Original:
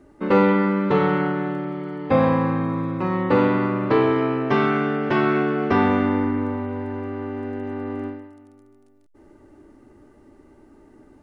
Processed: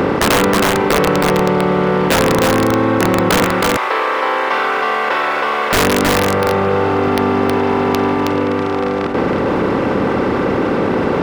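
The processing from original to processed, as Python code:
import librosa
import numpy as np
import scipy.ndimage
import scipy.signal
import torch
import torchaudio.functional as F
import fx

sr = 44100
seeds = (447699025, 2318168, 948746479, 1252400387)

y = fx.bin_compress(x, sr, power=0.2)
y = fx.highpass(y, sr, hz=830.0, slope=12, at=(3.45, 5.73))
y = fx.dereverb_blind(y, sr, rt60_s=1.4)
y = fx.leveller(y, sr, passes=1)
y = (np.mod(10.0 ** (5.5 / 20.0) * y + 1.0, 2.0) - 1.0) / 10.0 ** (5.5 / 20.0)
y = y + 10.0 ** (-3.5 / 20.0) * np.pad(y, (int(319 * sr / 1000.0), 0))[:len(y)]
y = fx.env_flatten(y, sr, amount_pct=50)
y = y * 10.0 ** (-2.5 / 20.0)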